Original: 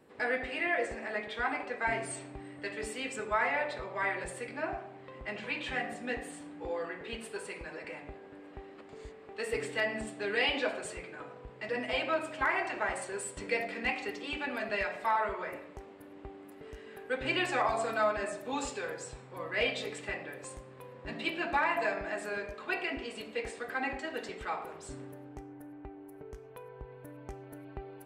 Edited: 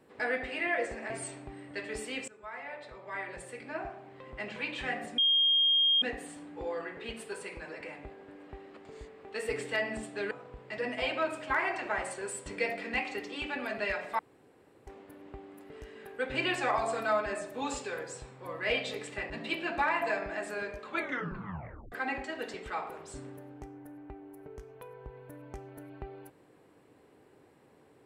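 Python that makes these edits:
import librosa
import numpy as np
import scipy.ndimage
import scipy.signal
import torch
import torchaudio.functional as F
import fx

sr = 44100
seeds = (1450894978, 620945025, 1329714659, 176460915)

y = fx.edit(x, sr, fx.cut(start_s=1.1, length_s=0.88),
    fx.fade_in_from(start_s=3.16, length_s=2.05, floor_db=-20.0),
    fx.insert_tone(at_s=6.06, length_s=0.84, hz=3230.0, db=-22.0),
    fx.cut(start_s=10.35, length_s=0.87),
    fx.room_tone_fill(start_s=15.1, length_s=0.68),
    fx.cut(start_s=20.21, length_s=0.84),
    fx.tape_stop(start_s=22.62, length_s=1.05), tone=tone)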